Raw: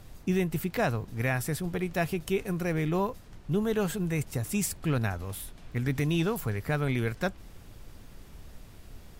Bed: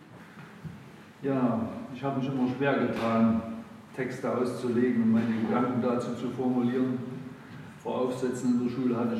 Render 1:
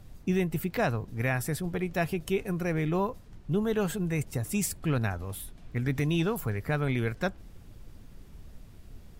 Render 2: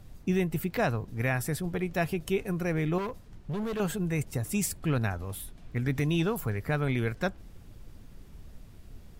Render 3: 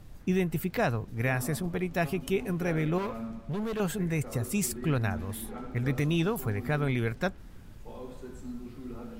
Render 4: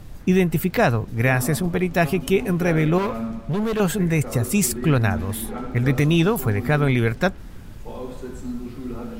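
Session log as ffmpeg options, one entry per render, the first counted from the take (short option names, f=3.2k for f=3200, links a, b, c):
-af "afftdn=nr=6:nf=-50"
-filter_complex "[0:a]asettb=1/sr,asplit=3[a][b][c];[a]atrim=end=2.984[d];[b]atrim=start=2.98:end=3.8,asetpts=PTS-STARTPTS,afade=t=in:d=0.004:c=qsin,afade=t=out:st=0.816:d=0.004:c=qsin,volume=30dB,asoftclip=hard,volume=-30dB[e];[c]atrim=start=3.796[f];[d][e]acrossfade=d=0.004:c1=hsin:c2=qsin[g];[g][f]acrossfade=d=0.004:c1=qsin:c2=hsin"
-filter_complex "[1:a]volume=-14.5dB[a];[0:a][a]amix=inputs=2:normalize=0"
-af "volume=9.5dB"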